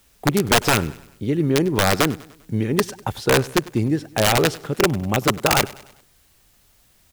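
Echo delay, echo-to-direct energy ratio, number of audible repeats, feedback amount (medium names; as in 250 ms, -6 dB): 99 ms, -19.5 dB, 3, 49%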